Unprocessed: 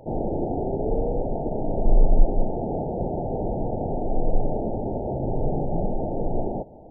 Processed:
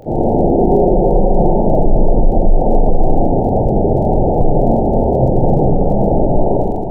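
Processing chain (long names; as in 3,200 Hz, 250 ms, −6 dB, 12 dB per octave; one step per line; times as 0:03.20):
0:00.56–0:01.52: comb filter 5.5 ms, depth 69%
0:05.54–0:06.32: compressor whose output falls as the input rises −24 dBFS, ratio −0.5
flutter between parallel walls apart 7.8 metres, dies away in 0.35 s
tape wow and flutter 59 cents
four-comb reverb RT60 2.2 s, combs from 31 ms, DRR −2.5 dB
surface crackle 25 per second −41 dBFS
0:02.89–0:04.41: reverse
boost into a limiter +10 dB
level −1 dB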